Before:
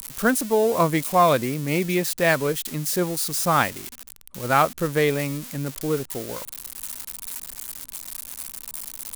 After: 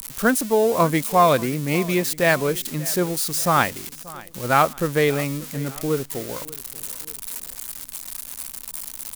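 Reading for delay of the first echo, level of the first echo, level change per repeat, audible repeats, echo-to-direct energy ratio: 585 ms, −20.0 dB, −6.5 dB, 2, −19.0 dB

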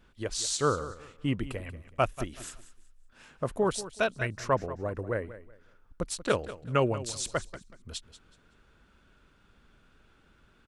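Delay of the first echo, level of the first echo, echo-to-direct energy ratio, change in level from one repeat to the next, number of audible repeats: 187 ms, −15.0 dB, −14.5 dB, −11.5 dB, 2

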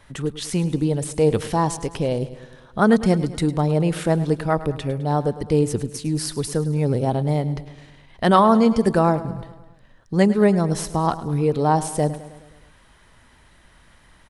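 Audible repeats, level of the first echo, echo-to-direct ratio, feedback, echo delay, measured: 5, −15.5 dB, −13.5 dB, 58%, 105 ms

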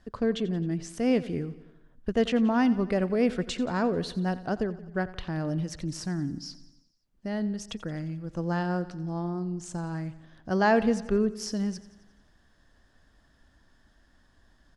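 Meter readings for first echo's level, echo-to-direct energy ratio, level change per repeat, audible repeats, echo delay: −17.0 dB, −15.0 dB, −4.5 dB, 4, 88 ms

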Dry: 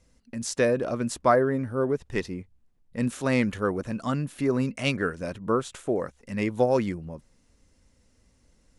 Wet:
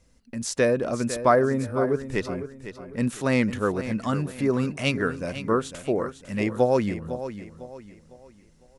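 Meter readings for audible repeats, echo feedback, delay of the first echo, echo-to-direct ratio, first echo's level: 3, 36%, 503 ms, −11.0 dB, −11.5 dB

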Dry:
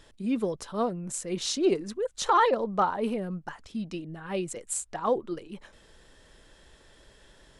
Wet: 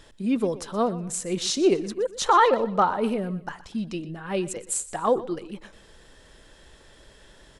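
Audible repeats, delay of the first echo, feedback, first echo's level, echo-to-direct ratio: 2, 122 ms, 33%, −17.0 dB, −16.5 dB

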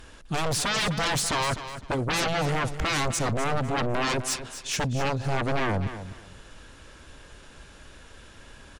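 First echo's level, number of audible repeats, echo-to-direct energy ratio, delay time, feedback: −11.5 dB, 2, −11.5 dB, 253 ms, 23%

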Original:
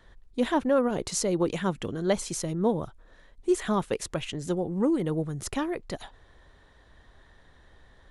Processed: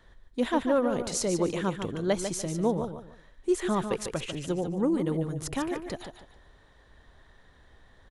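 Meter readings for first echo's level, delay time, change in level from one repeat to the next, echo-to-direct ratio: −8.0 dB, 147 ms, −11.0 dB, −7.5 dB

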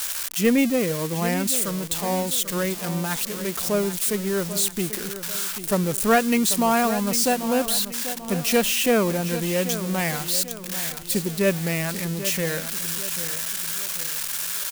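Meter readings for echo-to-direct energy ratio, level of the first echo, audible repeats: −11.0 dB, −12.0 dB, 4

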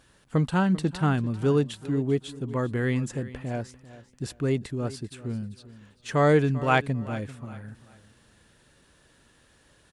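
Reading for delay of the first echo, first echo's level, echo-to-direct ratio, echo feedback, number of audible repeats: 393 ms, −17.0 dB, −16.5 dB, 28%, 2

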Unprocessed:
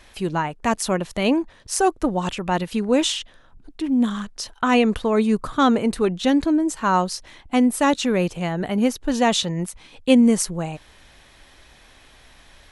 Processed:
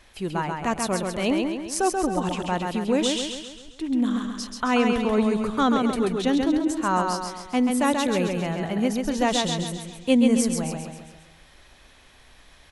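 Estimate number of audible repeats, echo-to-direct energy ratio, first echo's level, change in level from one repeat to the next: 6, −3.0 dB, −4.0 dB, −6.0 dB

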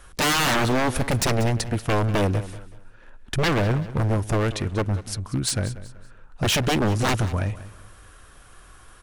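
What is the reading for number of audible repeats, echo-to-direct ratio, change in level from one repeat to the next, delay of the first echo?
2, −15.0 dB, −10.0 dB, 189 ms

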